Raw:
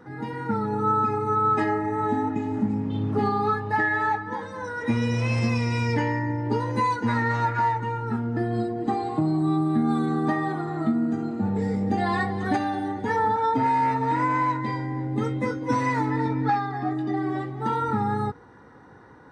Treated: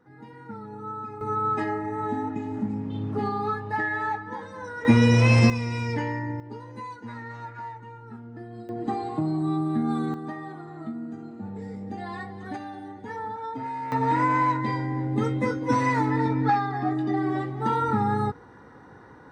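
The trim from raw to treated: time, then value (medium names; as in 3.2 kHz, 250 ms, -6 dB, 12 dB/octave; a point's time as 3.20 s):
-13 dB
from 1.21 s -4 dB
from 4.85 s +7 dB
from 5.50 s -4 dB
from 6.40 s -14.5 dB
from 8.69 s -3 dB
from 10.14 s -11 dB
from 13.92 s +1 dB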